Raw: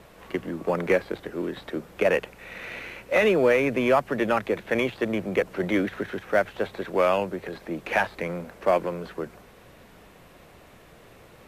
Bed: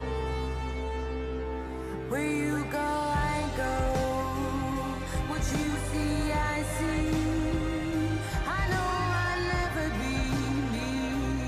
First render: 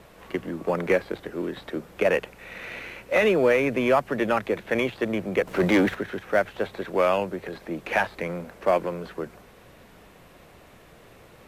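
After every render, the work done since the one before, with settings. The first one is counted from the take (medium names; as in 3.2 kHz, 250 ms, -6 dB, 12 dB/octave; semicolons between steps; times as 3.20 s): 5.47–5.95 s: waveshaping leveller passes 2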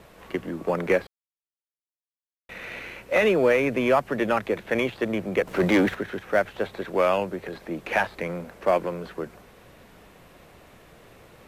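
1.07–2.49 s: mute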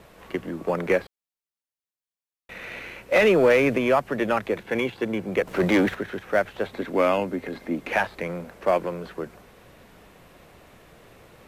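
3.12–3.78 s: waveshaping leveller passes 1; 4.63–5.29 s: comb of notches 620 Hz; 6.73–7.91 s: small resonant body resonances 260/2100 Hz, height 13 dB, ringing for 85 ms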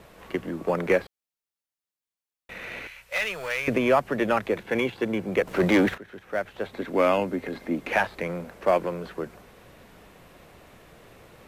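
2.87–3.68 s: amplifier tone stack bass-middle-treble 10-0-10; 5.98–7.09 s: fade in, from -14.5 dB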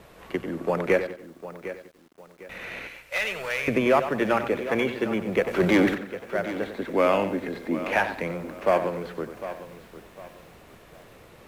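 tape echo 93 ms, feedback 34%, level -9 dB, low-pass 3.8 kHz; bit-crushed delay 753 ms, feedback 35%, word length 8-bit, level -13 dB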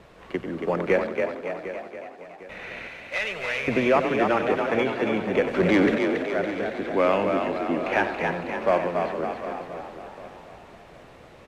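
distance through air 62 m; frequency-shifting echo 279 ms, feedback 54%, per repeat +44 Hz, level -5 dB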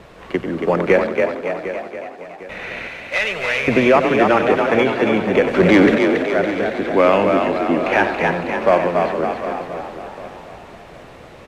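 trim +8 dB; peak limiter -3 dBFS, peak gain reduction 2.5 dB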